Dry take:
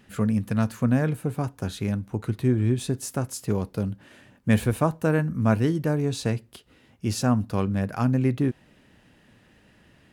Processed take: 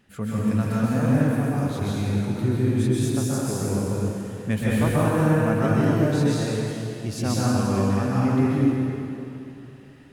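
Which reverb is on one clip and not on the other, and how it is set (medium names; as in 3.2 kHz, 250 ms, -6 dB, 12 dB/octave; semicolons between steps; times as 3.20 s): plate-style reverb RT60 2.8 s, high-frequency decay 0.9×, pre-delay 115 ms, DRR -8 dB; trim -5.5 dB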